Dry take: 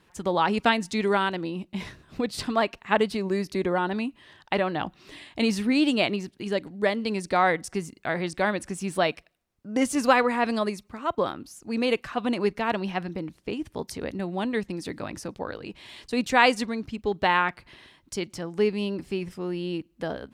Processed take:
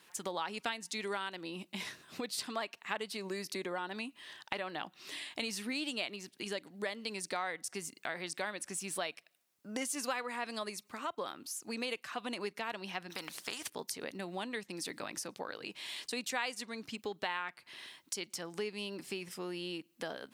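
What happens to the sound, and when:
13.10–13.70 s: spectrum-flattening compressor 2:1
whole clip: high-pass 130 Hz; tilt EQ +3 dB/octave; compression 3:1, threshold -37 dBFS; trim -1.5 dB

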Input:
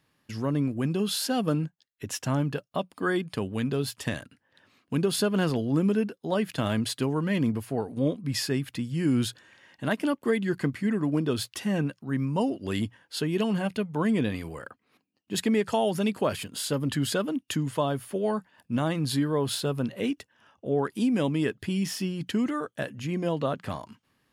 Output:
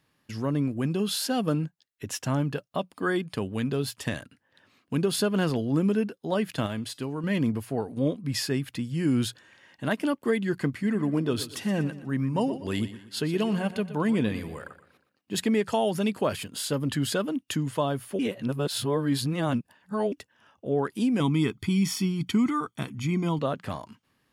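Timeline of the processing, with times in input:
6.66–7.24 s: feedback comb 290 Hz, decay 0.43 s, mix 50%
10.70–15.44 s: feedback delay 120 ms, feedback 40%, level -14 dB
18.19–20.12 s: reverse
21.20–23.39 s: comb 0.9 ms, depth 87%

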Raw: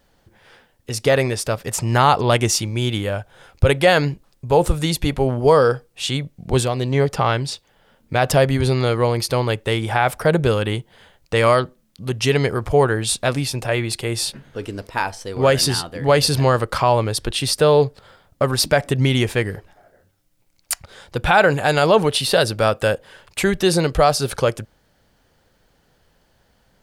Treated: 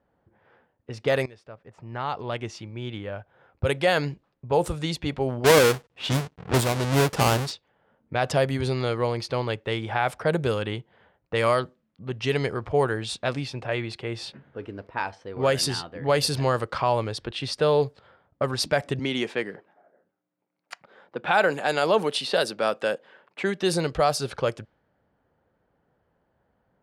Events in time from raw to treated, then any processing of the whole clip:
1.26–4.12 s: fade in, from -18.5 dB
5.44–7.52 s: square wave that keeps the level
18.99–23.62 s: high-pass 180 Hz 24 dB/octave
whole clip: high-pass 59 Hz; level-controlled noise filter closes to 1.3 kHz, open at -11.5 dBFS; bass shelf 130 Hz -4 dB; trim -6.5 dB

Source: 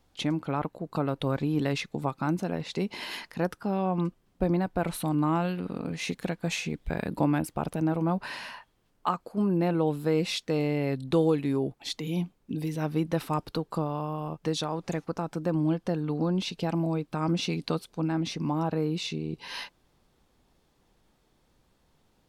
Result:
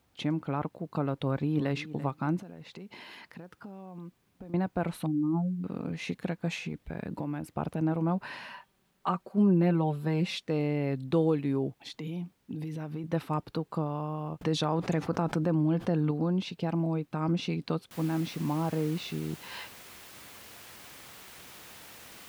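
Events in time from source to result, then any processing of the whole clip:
1.17–1.75 s: echo throw 340 ms, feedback 10%, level -15 dB
2.40–4.54 s: compression 8:1, threshold -39 dBFS
5.06–5.64 s: spectral contrast enhancement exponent 3.2
6.56–7.54 s: compression 4:1, threshold -29 dBFS
8.50–10.42 s: comb 5.2 ms, depth 67%
11.73–13.04 s: compression, threshold -31 dBFS
14.41–16.11 s: level flattener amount 70%
17.91 s: noise floor step -68 dB -41 dB
whole clip: high-pass 66 Hz; tone controls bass +3 dB, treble -8 dB; trim -3 dB

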